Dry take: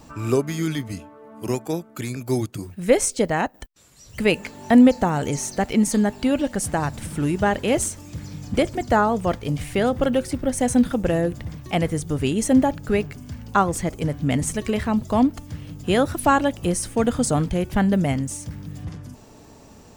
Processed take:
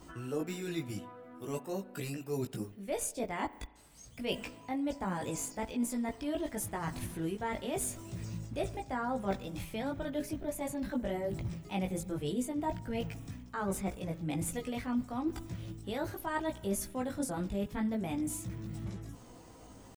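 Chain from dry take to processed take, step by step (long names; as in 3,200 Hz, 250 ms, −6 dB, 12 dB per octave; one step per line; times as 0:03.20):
pitch shifter +2 semitones
reversed playback
downward compressor 6 to 1, threshold −26 dBFS, peak gain reduction 16 dB
reversed playback
multi-voice chorus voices 4, 0.34 Hz, delay 18 ms, depth 2.7 ms
spring reverb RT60 1.2 s, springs 36 ms, chirp 50 ms, DRR 17.5 dB
level −3.5 dB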